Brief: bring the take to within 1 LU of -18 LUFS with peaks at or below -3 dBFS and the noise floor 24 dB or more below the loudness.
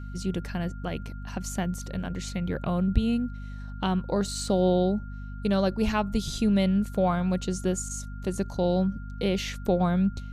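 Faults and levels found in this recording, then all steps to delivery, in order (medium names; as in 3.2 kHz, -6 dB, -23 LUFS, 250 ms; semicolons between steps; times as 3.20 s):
hum 50 Hz; highest harmonic 250 Hz; hum level -35 dBFS; steady tone 1.4 kHz; tone level -49 dBFS; loudness -28.0 LUFS; peak level -8.5 dBFS; loudness target -18.0 LUFS
-> hum notches 50/100/150/200/250 Hz; band-stop 1.4 kHz, Q 30; trim +10 dB; peak limiter -3 dBFS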